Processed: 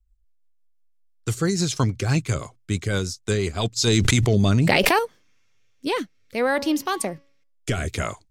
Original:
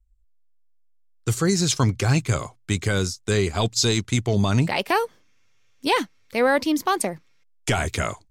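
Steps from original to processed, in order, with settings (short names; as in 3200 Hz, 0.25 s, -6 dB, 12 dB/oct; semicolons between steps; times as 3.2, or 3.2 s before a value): 6.53–7.71 de-hum 280.2 Hz, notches 21; rotary speaker horn 6 Hz, later 0.65 Hz, at 3.49; 3.87–4.99 fast leveller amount 100%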